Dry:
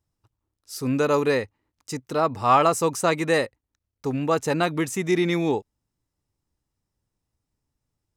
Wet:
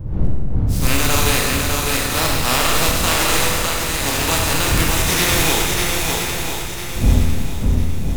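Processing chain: spectral contrast reduction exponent 0.3; wind noise 100 Hz -24 dBFS; in parallel at -1.5 dB: gain riding within 4 dB; on the sum: peak limiter -3.5 dBFS, peak gain reduction 10.5 dB; on a send: shuffle delay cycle 1003 ms, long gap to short 1.5:1, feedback 35%, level -3.5 dB; on the sum: Schroeder reverb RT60 1.7 s, combs from 25 ms, DRR -1.5 dB; trim -4 dB

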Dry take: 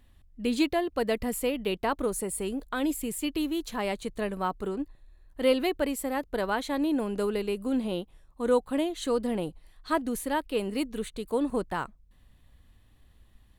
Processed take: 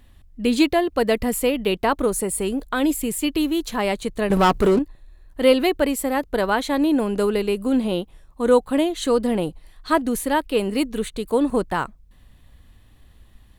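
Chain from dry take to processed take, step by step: 4.30–4.79 s: waveshaping leveller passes 3; trim +8 dB

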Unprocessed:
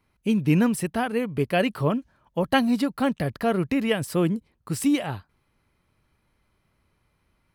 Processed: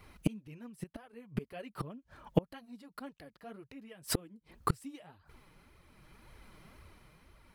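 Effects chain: tremolo 0.61 Hz, depth 48%; inverted gate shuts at -25 dBFS, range -37 dB; flange 1.9 Hz, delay 1.4 ms, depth 5.3 ms, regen +1%; trim +16 dB

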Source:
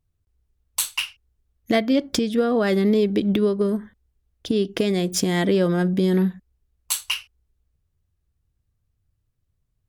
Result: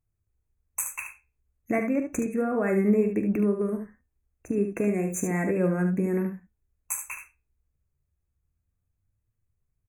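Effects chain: flange 0.32 Hz, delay 8.7 ms, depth 6.3 ms, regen +72%; brick-wall FIR band-stop 2.7–6 kHz; early reflections 44 ms -13 dB, 73 ms -7.5 dB; trim -1.5 dB

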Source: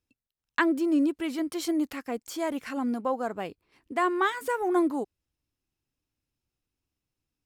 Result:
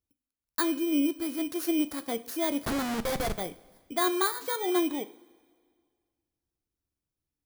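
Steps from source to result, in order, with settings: bit-reversed sample order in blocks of 16 samples; gain riding 2 s; 2.65–3.38 s: Schmitt trigger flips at -31.5 dBFS; two-slope reverb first 0.44 s, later 1.9 s, from -16 dB, DRR 11 dB; trim -2 dB

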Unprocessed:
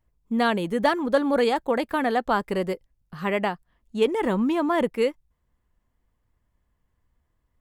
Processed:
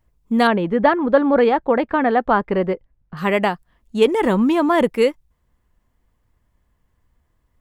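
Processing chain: 0.47–3.17 s: low-pass 2.1 kHz 12 dB/octave; trim +6.5 dB

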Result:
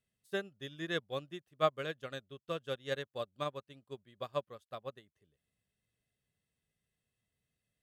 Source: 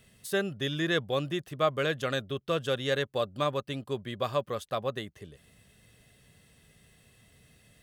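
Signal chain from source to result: upward expansion 2.5:1, over -38 dBFS; trim -2 dB

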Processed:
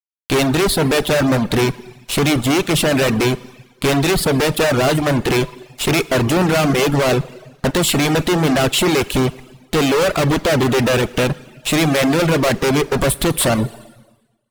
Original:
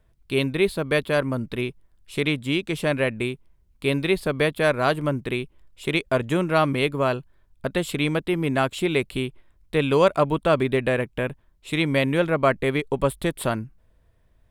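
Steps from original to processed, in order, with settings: fuzz box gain 39 dB, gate -44 dBFS; Schroeder reverb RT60 1.1 s, DRR 8.5 dB; reverb removal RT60 0.56 s

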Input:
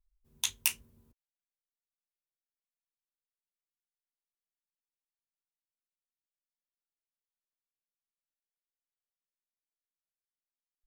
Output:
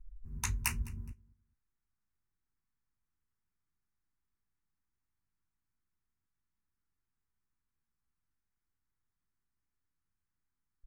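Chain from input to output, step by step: RIAA curve playback; static phaser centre 1.4 kHz, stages 4; feedback delay 209 ms, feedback 25%, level -22 dB; trim +9 dB

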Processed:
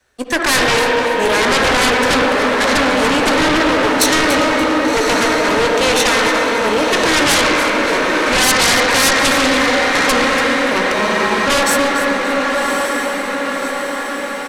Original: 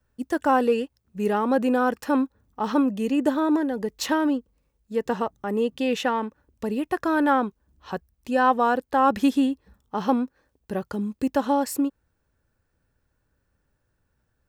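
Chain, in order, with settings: comb filter that takes the minimum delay 0.49 ms; three-band isolator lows -19 dB, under 390 Hz, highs -19 dB, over 7.7 kHz; doubling 16 ms -14 dB; echo that smears into a reverb 1127 ms, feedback 61%, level -6.5 dB; reverberation RT60 3.1 s, pre-delay 48 ms, DRR 1.5 dB; sine folder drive 14 dB, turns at -11 dBFS; peaking EQ 11 kHz +10 dB 1.4 oct; spectral freeze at 10.95 s, 0.52 s; bit-crushed delay 288 ms, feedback 35%, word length 7-bit, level -11 dB

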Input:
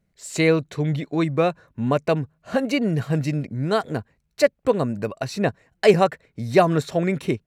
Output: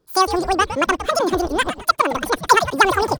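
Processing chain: frequency-shifting echo 256 ms, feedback 31%, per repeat -130 Hz, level -10.5 dB; speed mistake 33 rpm record played at 78 rpm; trim +3 dB

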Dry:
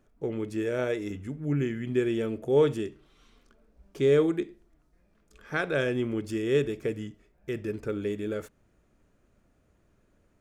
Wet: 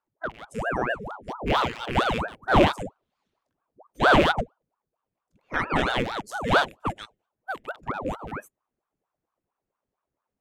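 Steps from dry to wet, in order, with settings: rattle on loud lows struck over -34 dBFS, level -16 dBFS; spectral noise reduction 23 dB; ring modulator with a swept carrier 630 Hz, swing 85%, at 4.4 Hz; trim +6.5 dB

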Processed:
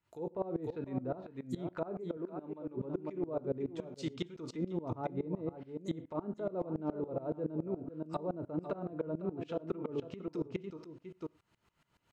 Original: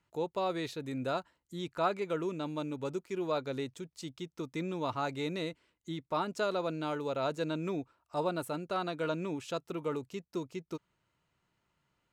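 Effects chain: low-pass that closes with the level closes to 510 Hz, closed at -32 dBFS; delay 499 ms -9.5 dB; gated-style reverb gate 140 ms falling, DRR 10.5 dB; peak limiter -33 dBFS, peak gain reduction 10 dB; 2.17–2.77 s: bass shelf 320 Hz -11 dB; sawtooth tremolo in dB swelling 7.1 Hz, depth 21 dB; trim +9.5 dB

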